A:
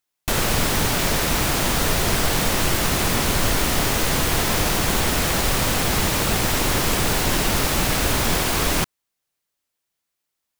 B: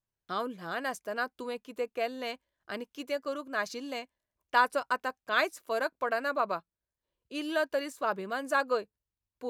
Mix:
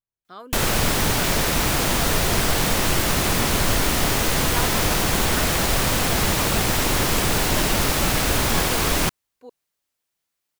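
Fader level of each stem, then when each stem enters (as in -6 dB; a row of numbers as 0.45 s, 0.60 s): 0.0 dB, -7.0 dB; 0.25 s, 0.00 s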